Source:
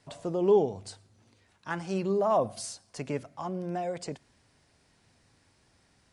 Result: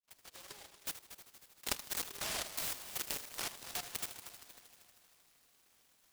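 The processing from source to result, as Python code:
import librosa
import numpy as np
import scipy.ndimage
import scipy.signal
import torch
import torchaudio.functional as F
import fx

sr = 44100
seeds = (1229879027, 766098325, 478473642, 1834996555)

y = fx.fade_in_head(x, sr, length_s=0.88)
y = scipy.signal.sosfilt(scipy.signal.cheby1(3, 1.0, [1300.0, 8900.0], 'bandpass', fs=sr, output='sos'), y)
y = fx.high_shelf(y, sr, hz=5500.0, db=-12.0)
y = fx.transient(y, sr, attack_db=1, sustain_db=-6)
y = fx.level_steps(y, sr, step_db=17)
y = fx.env_flanger(y, sr, rest_ms=6.7, full_db=-50.5)
y = fx.echo_heads(y, sr, ms=78, heads='first and third', feedback_pct=67, wet_db=-13)
y = fx.noise_mod_delay(y, sr, seeds[0], noise_hz=3300.0, depth_ms=0.27)
y = F.gain(torch.from_numpy(y), 17.5).numpy()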